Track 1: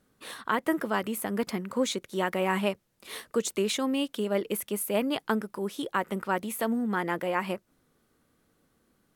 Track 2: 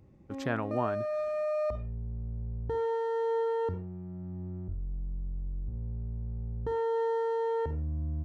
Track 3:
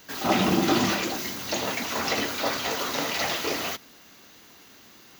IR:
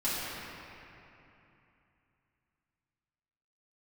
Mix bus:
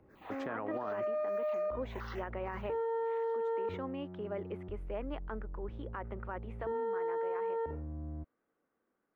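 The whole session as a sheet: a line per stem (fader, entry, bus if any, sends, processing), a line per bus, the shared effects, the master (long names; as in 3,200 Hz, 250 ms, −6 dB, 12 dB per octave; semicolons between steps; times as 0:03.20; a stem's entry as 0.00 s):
−8.5 dB, 0.00 s, no send, low-pass filter 2,800 Hz 12 dB per octave
+2.5 dB, 0.00 s, no send, low-shelf EQ 79 Hz +9.5 dB
0:00.90 −17 dB → 0:01.21 −10.5 dB → 0:02.13 −10.5 dB → 0:02.79 −23 dB, 0.00 s, no send, two-band tremolo in antiphase 1.7 Hz, depth 100%, crossover 660 Hz; step-sequenced phaser 6.5 Hz 810–2,400 Hz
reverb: not used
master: three-way crossover with the lows and the highs turned down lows −17 dB, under 270 Hz, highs −18 dB, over 2,400 Hz; brickwall limiter −28.5 dBFS, peak gain reduction 12.5 dB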